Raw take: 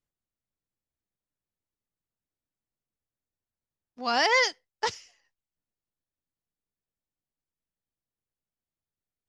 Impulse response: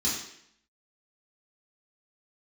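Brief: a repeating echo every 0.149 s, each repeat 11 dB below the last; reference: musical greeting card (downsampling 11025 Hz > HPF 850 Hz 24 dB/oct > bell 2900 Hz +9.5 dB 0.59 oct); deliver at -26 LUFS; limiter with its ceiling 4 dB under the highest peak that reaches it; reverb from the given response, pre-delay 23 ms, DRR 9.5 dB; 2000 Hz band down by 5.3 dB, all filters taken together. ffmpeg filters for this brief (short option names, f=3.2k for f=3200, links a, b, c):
-filter_complex "[0:a]equalizer=f=2k:t=o:g=-8.5,alimiter=limit=-19dB:level=0:latency=1,aecho=1:1:149|298|447:0.282|0.0789|0.0221,asplit=2[a][b];[1:a]atrim=start_sample=2205,adelay=23[c];[b][c]afir=irnorm=-1:irlink=0,volume=-17.5dB[d];[a][d]amix=inputs=2:normalize=0,aresample=11025,aresample=44100,highpass=f=850:w=0.5412,highpass=f=850:w=1.3066,equalizer=f=2.9k:t=o:w=0.59:g=9.5,volume=3.5dB"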